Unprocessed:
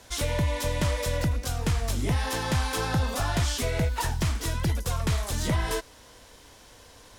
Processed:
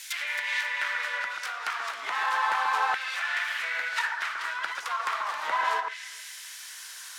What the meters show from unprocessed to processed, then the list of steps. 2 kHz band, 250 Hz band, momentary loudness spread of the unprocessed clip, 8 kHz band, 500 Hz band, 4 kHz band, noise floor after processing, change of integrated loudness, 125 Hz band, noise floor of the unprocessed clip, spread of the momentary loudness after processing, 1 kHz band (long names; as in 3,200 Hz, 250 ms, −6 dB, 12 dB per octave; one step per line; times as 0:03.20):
+8.0 dB, below −25 dB, 2 LU, −7.0 dB, −11.5 dB, −1.0 dB, −43 dBFS, −1.0 dB, below −40 dB, −52 dBFS, 14 LU, +6.0 dB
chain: stylus tracing distortion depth 0.36 ms
RIAA equalisation recording
treble cut that deepens with the level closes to 2,000 Hz, closed at −22.5 dBFS
low-shelf EQ 92 Hz −7.5 dB
delay that swaps between a low-pass and a high-pass 135 ms, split 1,800 Hz, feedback 55%, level −5 dB
auto-filter high-pass saw down 0.34 Hz 920–2,100 Hz
level +2.5 dB